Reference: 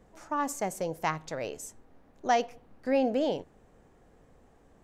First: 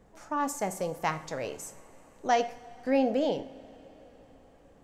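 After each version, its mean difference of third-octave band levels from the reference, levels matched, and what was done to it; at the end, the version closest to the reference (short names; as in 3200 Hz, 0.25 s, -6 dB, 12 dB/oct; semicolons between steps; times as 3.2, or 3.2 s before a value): 3.0 dB: two-slope reverb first 0.45 s, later 4.7 s, from -18 dB, DRR 10 dB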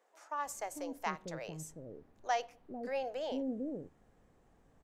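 4.5 dB: bands offset in time highs, lows 0.45 s, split 450 Hz; gain -6.5 dB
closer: first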